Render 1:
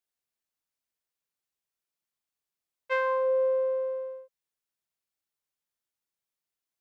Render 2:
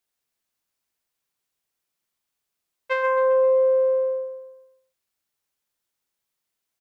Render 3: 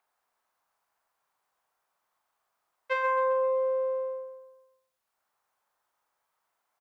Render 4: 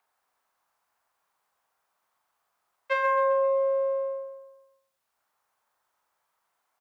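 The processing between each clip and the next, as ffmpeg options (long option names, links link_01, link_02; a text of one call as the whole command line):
ffmpeg -i in.wav -filter_complex "[0:a]acompressor=threshold=-27dB:ratio=6,asplit=2[link_01][link_02];[link_02]aecho=0:1:132|264|396|528|660:0.398|0.183|0.0842|0.0388|0.0178[link_03];[link_01][link_03]amix=inputs=2:normalize=0,volume=7dB" out.wav
ffmpeg -i in.wav -filter_complex "[0:a]acrossover=split=900|1000|1500[link_01][link_02][link_03][link_04];[link_02]acompressor=mode=upward:threshold=-56dB:ratio=2.5[link_05];[link_01][link_05][link_03][link_04]amix=inputs=4:normalize=0,asplit=2[link_06][link_07];[link_07]adelay=41,volume=-7dB[link_08];[link_06][link_08]amix=inputs=2:normalize=0,volume=-4.5dB" out.wav
ffmpeg -i in.wav -af "afreqshift=20,volume=2.5dB" out.wav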